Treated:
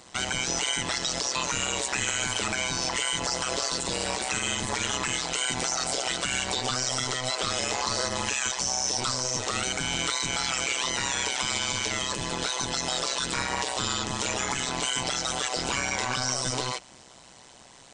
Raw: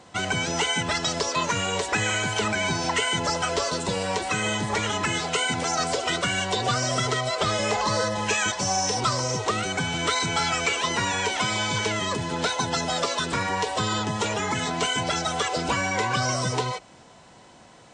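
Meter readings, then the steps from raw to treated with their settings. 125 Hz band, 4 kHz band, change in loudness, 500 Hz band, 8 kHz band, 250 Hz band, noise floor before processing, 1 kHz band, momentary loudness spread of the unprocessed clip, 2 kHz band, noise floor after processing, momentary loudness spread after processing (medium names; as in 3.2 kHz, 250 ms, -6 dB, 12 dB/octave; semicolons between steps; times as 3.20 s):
-8.0 dB, -0.5 dB, -2.0 dB, -6.5 dB, +2.0 dB, -6.0 dB, -51 dBFS, -6.0 dB, 3 LU, -4.0 dB, -51 dBFS, 2 LU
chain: treble shelf 2.9 kHz +12 dB; peak limiter -15 dBFS, peak gain reduction 8.5 dB; AM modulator 130 Hz, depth 95%; resampled via 22.05 kHz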